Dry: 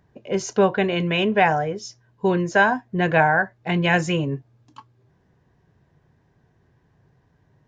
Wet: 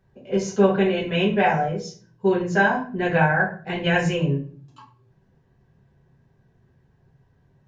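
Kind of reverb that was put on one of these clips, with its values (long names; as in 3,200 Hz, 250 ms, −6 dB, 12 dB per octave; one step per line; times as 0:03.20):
rectangular room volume 34 cubic metres, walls mixed, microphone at 1.1 metres
level −9 dB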